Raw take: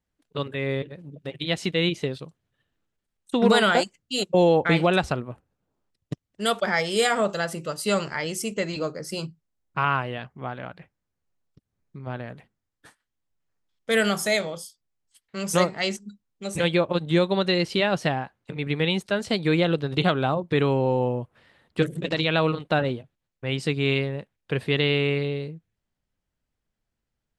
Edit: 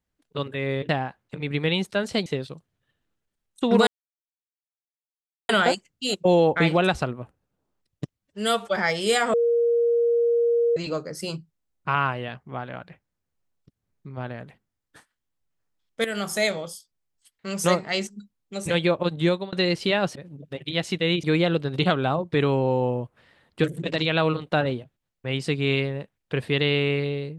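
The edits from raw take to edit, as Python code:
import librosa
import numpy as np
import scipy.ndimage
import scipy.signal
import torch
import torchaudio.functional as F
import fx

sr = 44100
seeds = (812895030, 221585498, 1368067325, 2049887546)

y = fx.edit(x, sr, fx.swap(start_s=0.89, length_s=1.08, other_s=18.05, other_length_s=1.37),
    fx.insert_silence(at_s=3.58, length_s=1.62),
    fx.stretch_span(start_s=6.27, length_s=0.39, factor=1.5),
    fx.bleep(start_s=7.23, length_s=1.43, hz=470.0, db=-17.5),
    fx.fade_in_from(start_s=13.94, length_s=0.37, floor_db=-13.0),
    fx.fade_out_span(start_s=17.07, length_s=0.35, curve='qsin'), tone=tone)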